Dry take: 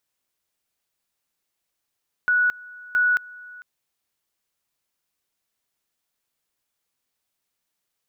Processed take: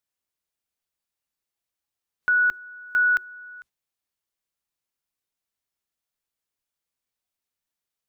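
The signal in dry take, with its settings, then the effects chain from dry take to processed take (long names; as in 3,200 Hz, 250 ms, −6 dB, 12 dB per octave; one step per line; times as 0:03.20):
tone at two levels in turn 1,470 Hz −16 dBFS, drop 22.5 dB, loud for 0.22 s, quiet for 0.45 s, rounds 2
sub-octave generator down 2 octaves, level −6 dB
noise reduction from a noise print of the clip's start 8 dB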